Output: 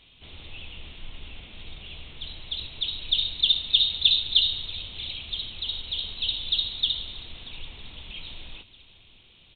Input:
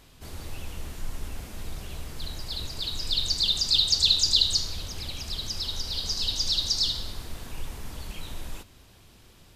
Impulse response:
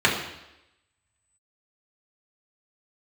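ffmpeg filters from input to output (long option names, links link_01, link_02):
-af "aecho=1:1:634|1268|1902:0.0891|0.0428|0.0205,aexciter=amount=4.4:drive=8:freq=2400,aresample=8000,aresample=44100,volume=-7dB"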